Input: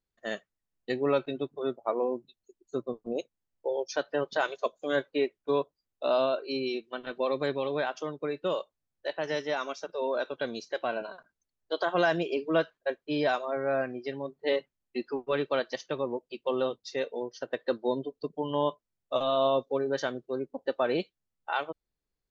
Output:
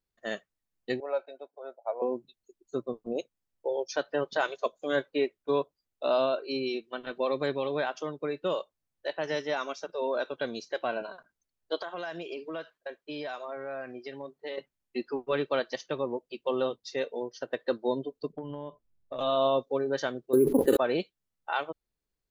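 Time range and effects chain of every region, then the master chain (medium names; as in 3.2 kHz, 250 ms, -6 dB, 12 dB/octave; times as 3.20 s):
1.00–2.02 s: ladder high-pass 450 Hz, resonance 45% + peaking EQ 3.2 kHz -14 dB 0.38 oct + comb 1.3 ms, depth 48%
11.79–14.58 s: bass shelf 330 Hz -8.5 dB + compression 4:1, threshold -34 dBFS
18.32–19.19 s: tilt EQ -3 dB/octave + compression 16:1, threshold -33 dBFS
20.33–20.77 s: resonant low shelf 510 Hz +6.5 dB, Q 3 + careless resampling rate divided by 4×, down filtered, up hold + level flattener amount 100%
whole clip: none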